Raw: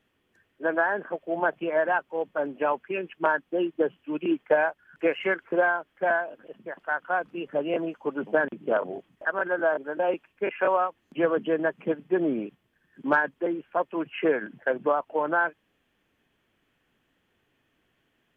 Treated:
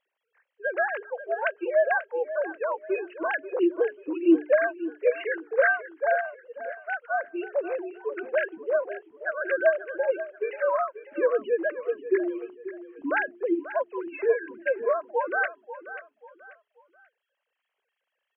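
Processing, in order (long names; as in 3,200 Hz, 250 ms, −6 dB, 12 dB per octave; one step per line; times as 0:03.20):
three sine waves on the formant tracks
mains-hum notches 60/120/180/240/300/360/420 Hz
repeating echo 537 ms, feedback 33%, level −13.5 dB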